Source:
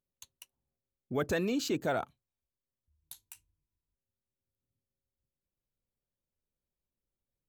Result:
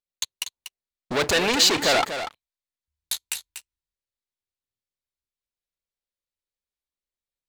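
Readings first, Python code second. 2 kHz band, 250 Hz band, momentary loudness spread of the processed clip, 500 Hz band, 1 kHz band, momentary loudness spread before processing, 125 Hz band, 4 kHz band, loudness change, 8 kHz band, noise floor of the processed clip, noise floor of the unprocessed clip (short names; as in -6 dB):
+15.5 dB, +4.0 dB, 16 LU, +8.5 dB, +13.0 dB, 20 LU, +3.0 dB, +22.5 dB, +10.5 dB, +20.0 dB, under -85 dBFS, under -85 dBFS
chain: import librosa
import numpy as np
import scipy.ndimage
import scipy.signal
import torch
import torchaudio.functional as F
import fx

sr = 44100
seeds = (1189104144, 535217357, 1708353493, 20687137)

p1 = fx.rider(x, sr, range_db=10, speed_s=0.5)
p2 = fx.leveller(p1, sr, passes=5)
p3 = fx.graphic_eq(p2, sr, hz=(125, 250, 500, 1000, 2000, 4000, 8000), db=(-6, -3, 3, 4, 7, 10, 6))
y = p3 + fx.echo_single(p3, sr, ms=241, db=-9.5, dry=0)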